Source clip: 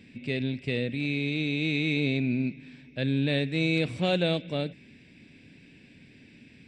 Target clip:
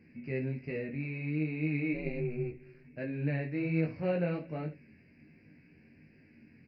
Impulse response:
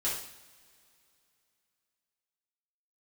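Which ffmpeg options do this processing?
-filter_complex "[0:a]flanger=delay=18.5:depth=4.6:speed=1.3,asplit=3[a][b][c];[a]afade=t=out:st=1.93:d=0.02[d];[b]aeval=exprs='val(0)*sin(2*PI*120*n/s)':c=same,afade=t=in:st=1.93:d=0.02,afade=t=out:st=2.83:d=0.02[e];[c]afade=t=in:st=2.83:d=0.02[f];[d][e][f]amix=inputs=3:normalize=0,asuperstop=centerf=3500:order=4:qfactor=1.2,asplit=2[g][h];[h]aecho=0:1:13|67:0.531|0.188[i];[g][i]amix=inputs=2:normalize=0,aresample=11025,aresample=44100,volume=-3.5dB"

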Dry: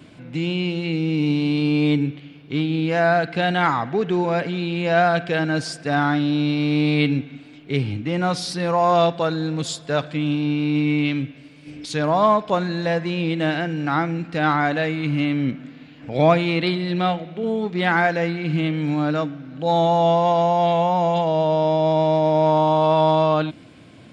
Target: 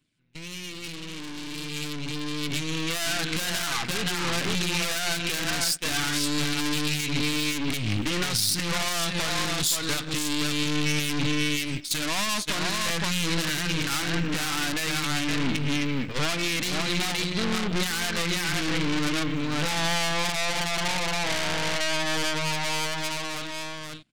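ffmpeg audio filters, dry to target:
-af "aecho=1:1:519:0.531,acompressor=threshold=-20dB:ratio=6,asetnsamples=n=441:p=0,asendcmd='14.1 highshelf g -10.5',highshelf=f=3.2k:g=-5,aphaser=in_gain=1:out_gain=1:delay=4.1:decay=0.27:speed=0.45:type=triangular,aeval=exprs='(tanh(39.8*val(0)+0.75)-tanh(0.75))/39.8':c=same,equalizer=f=620:w=0.86:g=-9,agate=range=-22dB:threshold=-37dB:ratio=16:detection=peak,dynaudnorm=f=470:g=11:m=15dB,crystalizer=i=7:c=0,alimiter=limit=-7dB:level=0:latency=1:release=152,volume=-5.5dB"

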